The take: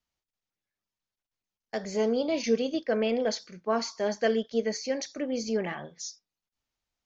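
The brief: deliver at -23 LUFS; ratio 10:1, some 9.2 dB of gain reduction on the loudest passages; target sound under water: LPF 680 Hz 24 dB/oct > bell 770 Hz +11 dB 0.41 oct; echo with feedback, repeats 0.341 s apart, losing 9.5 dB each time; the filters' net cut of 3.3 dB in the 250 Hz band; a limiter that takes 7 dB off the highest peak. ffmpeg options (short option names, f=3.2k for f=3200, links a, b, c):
-af "equalizer=f=250:t=o:g=-4,acompressor=threshold=-31dB:ratio=10,alimiter=level_in=4dB:limit=-24dB:level=0:latency=1,volume=-4dB,lowpass=f=680:w=0.5412,lowpass=f=680:w=1.3066,equalizer=f=770:t=o:w=0.41:g=11,aecho=1:1:341|682|1023|1364:0.335|0.111|0.0365|0.012,volume=15dB"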